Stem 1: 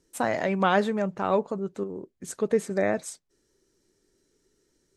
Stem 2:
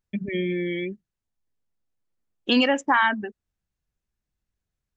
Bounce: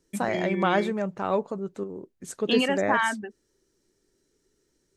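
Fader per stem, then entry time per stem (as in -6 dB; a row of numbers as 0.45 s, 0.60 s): -1.5 dB, -4.5 dB; 0.00 s, 0.00 s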